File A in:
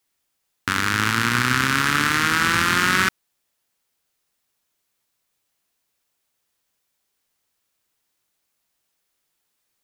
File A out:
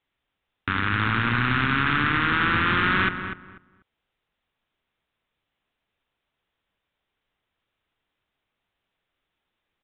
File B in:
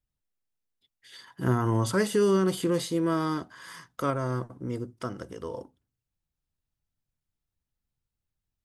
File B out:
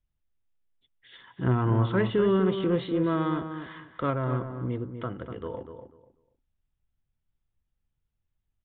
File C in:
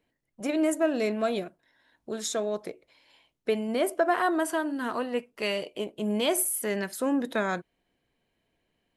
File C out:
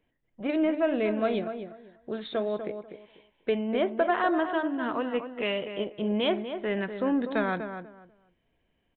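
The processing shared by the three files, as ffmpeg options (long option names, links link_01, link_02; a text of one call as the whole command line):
ffmpeg -i in.wav -filter_complex "[0:a]lowshelf=frequency=78:gain=9,aresample=8000,asoftclip=type=tanh:threshold=-13.5dB,aresample=44100,asplit=2[link_01][link_02];[link_02]adelay=245,lowpass=frequency=1800:poles=1,volume=-8dB,asplit=2[link_03][link_04];[link_04]adelay=245,lowpass=frequency=1800:poles=1,volume=0.22,asplit=2[link_05][link_06];[link_06]adelay=245,lowpass=frequency=1800:poles=1,volume=0.22[link_07];[link_01][link_03][link_05][link_07]amix=inputs=4:normalize=0" out.wav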